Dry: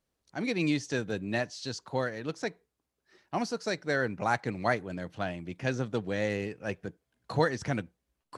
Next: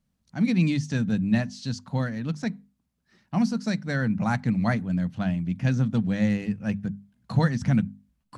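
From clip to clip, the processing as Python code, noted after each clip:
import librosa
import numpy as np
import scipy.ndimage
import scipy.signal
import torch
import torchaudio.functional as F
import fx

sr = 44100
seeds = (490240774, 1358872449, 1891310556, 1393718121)

y = fx.low_shelf_res(x, sr, hz=280.0, db=9.5, q=3.0)
y = fx.hum_notches(y, sr, base_hz=50, count=5)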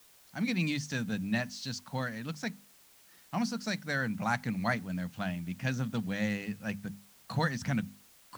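y = fx.low_shelf(x, sr, hz=480.0, db=-11.5)
y = fx.quant_dither(y, sr, seeds[0], bits=10, dither='triangular')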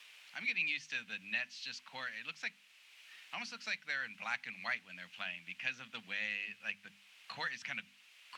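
y = fx.bandpass_q(x, sr, hz=2600.0, q=3.2)
y = fx.band_squash(y, sr, depth_pct=40)
y = y * librosa.db_to_amplitude(6.0)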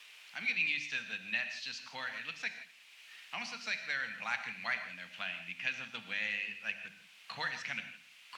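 y = fx.echo_feedback(x, sr, ms=116, feedback_pct=47, wet_db=-21.0)
y = fx.rev_gated(y, sr, seeds[1], gate_ms=190, shape='flat', drr_db=7.5)
y = y * librosa.db_to_amplitude(2.0)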